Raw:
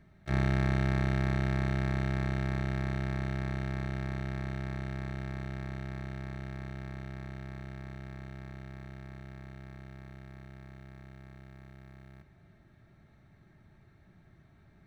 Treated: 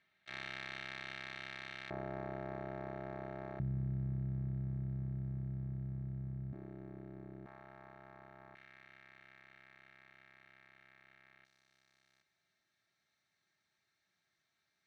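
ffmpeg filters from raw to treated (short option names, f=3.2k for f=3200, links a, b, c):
-af "asetnsamples=n=441:p=0,asendcmd='1.9 bandpass f 620;3.6 bandpass f 130;6.53 bandpass f 340;7.46 bandpass f 910;8.55 bandpass f 2300;11.45 bandpass f 5500',bandpass=f=3.1k:t=q:w=1.5:csg=0"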